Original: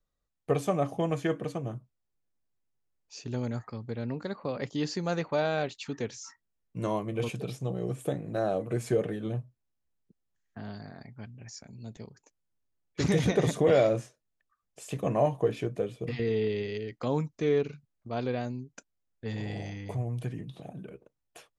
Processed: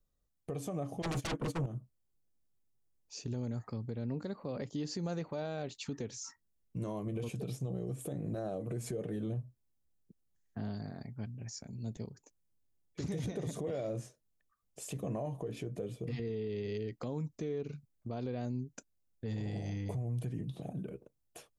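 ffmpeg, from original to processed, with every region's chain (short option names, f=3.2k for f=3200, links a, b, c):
-filter_complex "[0:a]asettb=1/sr,asplit=3[a][b][c];[a]atrim=end=1.024[d];[b]atrim=start=1.02:end=1.66,asetpts=PTS-STARTPTS,afade=t=in:d=0.004:c=qsin,afade=t=out:st=0.636:d=0.004:c=qsin,aeval=exprs='0.15*sin(PI/2*7.08*val(0)/0.15)':c=same,agate=range=-21dB:threshold=-21dB:ratio=16:release=100:detection=peak[e];[c]atrim=start=1.656[f];[d][e]acrossfade=d=0.004:c1=hsin:c2=qsin[g];[g][f]acrossfade=d=0.004:c1=qsin:c2=hsin,acompressor=threshold=-28dB:ratio=6,equalizer=f=1.8k:w=0.37:g=-9,alimiter=level_in=8.5dB:limit=-24dB:level=0:latency=1:release=135,volume=-8.5dB,volume=3.5dB"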